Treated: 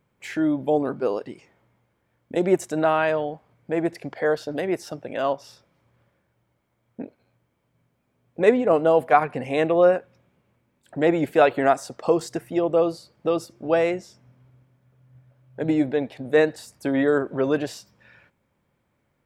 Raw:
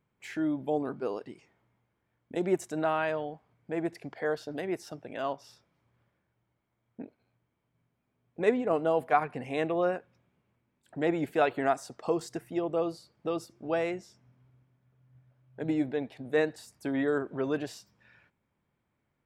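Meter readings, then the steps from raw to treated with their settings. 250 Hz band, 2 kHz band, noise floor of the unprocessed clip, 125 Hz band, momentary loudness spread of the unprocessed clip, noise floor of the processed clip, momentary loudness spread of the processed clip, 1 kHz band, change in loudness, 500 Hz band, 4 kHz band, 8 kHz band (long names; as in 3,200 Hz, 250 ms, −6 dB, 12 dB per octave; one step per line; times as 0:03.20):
+7.5 dB, +7.5 dB, −79 dBFS, +7.5 dB, 13 LU, −72 dBFS, 14 LU, +8.0 dB, +8.5 dB, +9.5 dB, +7.5 dB, can't be measured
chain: parametric band 540 Hz +5.5 dB 0.24 octaves
level +7.5 dB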